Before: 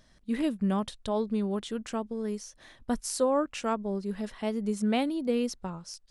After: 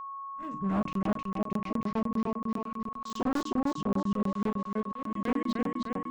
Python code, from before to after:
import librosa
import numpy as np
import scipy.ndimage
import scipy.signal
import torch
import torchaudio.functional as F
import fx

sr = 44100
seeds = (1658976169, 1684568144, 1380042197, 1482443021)

p1 = fx.level_steps(x, sr, step_db=19)
p2 = x + (p1 * 10.0 ** (-1.0 / 20.0))
p3 = fx.step_gate(p2, sr, bpm=119, pattern='...xxxxxx', floor_db=-60.0, edge_ms=4.5)
p4 = p3 + fx.echo_feedback(p3, sr, ms=312, feedback_pct=55, wet_db=-3, dry=0)
p5 = fx.formant_shift(p4, sr, semitones=-6)
p6 = fx.hum_notches(p5, sr, base_hz=60, count=5)
p7 = 10.0 ** (-21.5 / 20.0) * (np.abs((p6 / 10.0 ** (-21.5 / 20.0) + 3.0) % 4.0 - 2.0) - 1.0)
p8 = fx.low_shelf(p7, sr, hz=62.0, db=-9.0)
p9 = fx.doubler(p8, sr, ms=40.0, db=-12)
p10 = fx.auto_swell(p9, sr, attack_ms=393.0)
p11 = fx.peak_eq(p10, sr, hz=7700.0, db=-15.0, octaves=2.4)
p12 = p11 + 10.0 ** (-37.0 / 20.0) * np.sin(2.0 * np.pi * 1100.0 * np.arange(len(p11)) / sr)
y = fx.buffer_crackle(p12, sr, first_s=0.83, period_s=0.1, block=1024, kind='zero')